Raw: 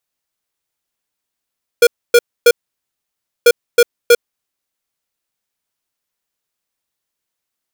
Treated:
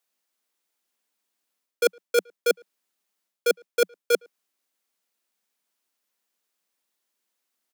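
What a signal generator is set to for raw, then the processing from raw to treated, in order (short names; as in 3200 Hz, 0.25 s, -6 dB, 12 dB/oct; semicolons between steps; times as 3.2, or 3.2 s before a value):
beep pattern square 477 Hz, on 0.05 s, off 0.27 s, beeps 3, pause 0.95 s, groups 2, -6.5 dBFS
steep high-pass 180 Hz 96 dB/oct; reverse; compressor 6:1, threshold -19 dBFS; reverse; speakerphone echo 0.11 s, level -29 dB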